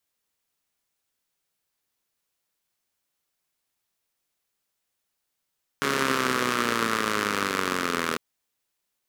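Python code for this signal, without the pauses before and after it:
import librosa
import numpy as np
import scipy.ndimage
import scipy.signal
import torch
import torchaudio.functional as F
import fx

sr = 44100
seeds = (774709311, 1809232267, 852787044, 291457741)

y = fx.engine_four_rev(sr, seeds[0], length_s=2.35, rpm=4200, resonances_hz=(260.0, 410.0, 1200.0), end_rpm=2400)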